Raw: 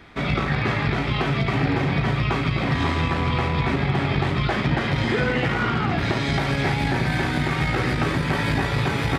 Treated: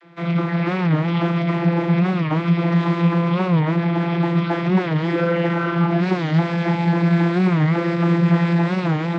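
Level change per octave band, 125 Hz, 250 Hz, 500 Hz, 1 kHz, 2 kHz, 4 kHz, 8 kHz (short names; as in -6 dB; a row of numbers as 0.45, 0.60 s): +4.0 dB, +7.0 dB, +3.5 dB, +0.5 dB, -3.0 dB, -5.5 dB, n/a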